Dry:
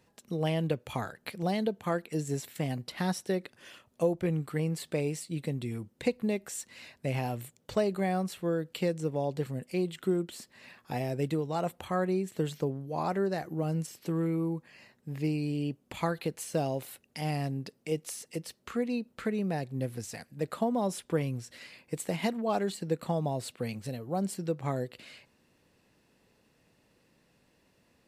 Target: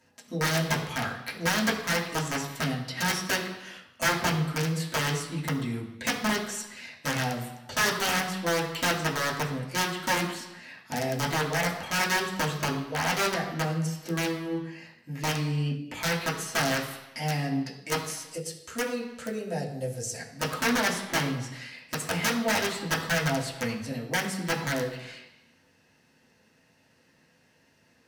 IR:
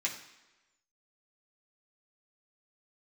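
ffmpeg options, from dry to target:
-filter_complex "[0:a]asettb=1/sr,asplit=3[link_01][link_02][link_03];[link_01]atrim=end=18.304[link_04];[link_02]atrim=start=18.3:end=20.19,asetpts=PTS-STARTPTS,afade=type=in:duration=0.004:curve=qsin,afade=type=out:start_time=1.886:duration=0.004:curve=qsin,equalizer=frequency=250:width_type=o:width=1:gain=-9,equalizer=frequency=500:width_type=o:width=1:gain=5,equalizer=frequency=1000:width_type=o:width=1:gain=-7,equalizer=frequency=2000:width_type=o:width=1:gain=-7,equalizer=frequency=4000:width_type=o:width=1:gain=-3,equalizer=frequency=8000:width_type=o:width=1:gain=8[link_05];[link_03]atrim=start=20.186[link_06];[link_04][link_05]acrossfade=duration=0.004:curve1=hsin:curve2=qsin[link_07];[link_07][link_06]acrossfade=duration=0.004:curve1=qsin:curve2=hsin,aeval=exprs='(mod(14.1*val(0)+1,2)-1)/14.1':channel_layout=same[link_08];[1:a]atrim=start_sample=2205,afade=type=out:start_time=0.42:duration=0.01,atrim=end_sample=18963,asetrate=35280,aresample=44100[link_09];[link_08][link_09]afir=irnorm=-1:irlink=0"

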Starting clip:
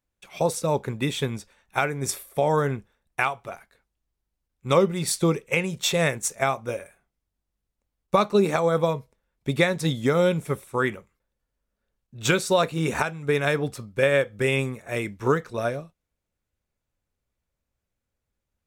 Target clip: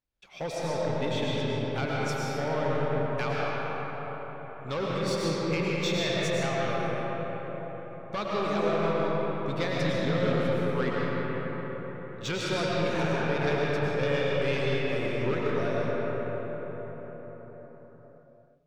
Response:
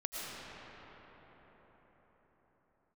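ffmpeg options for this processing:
-filter_complex "[0:a]asoftclip=type=tanh:threshold=-20.5dB,highshelf=frequency=6900:width_type=q:width=1.5:gain=-11[link_01];[1:a]atrim=start_sample=2205[link_02];[link_01][link_02]afir=irnorm=-1:irlink=0,volume=-4dB"

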